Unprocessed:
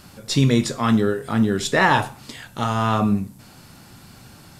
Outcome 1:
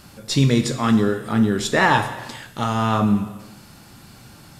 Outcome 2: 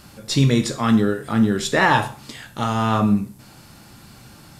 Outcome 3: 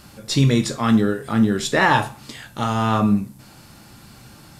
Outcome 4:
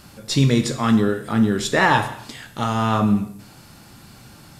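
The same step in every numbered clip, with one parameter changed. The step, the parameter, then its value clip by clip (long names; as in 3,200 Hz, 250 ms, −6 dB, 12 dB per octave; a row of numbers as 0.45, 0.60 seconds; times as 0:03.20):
reverb whose tail is shaped and stops, gate: 500, 160, 90, 320 milliseconds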